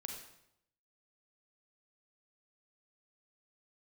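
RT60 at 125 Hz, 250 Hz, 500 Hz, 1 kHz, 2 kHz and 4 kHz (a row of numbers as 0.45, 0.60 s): 0.95, 0.80, 0.80, 0.75, 0.70, 0.65 s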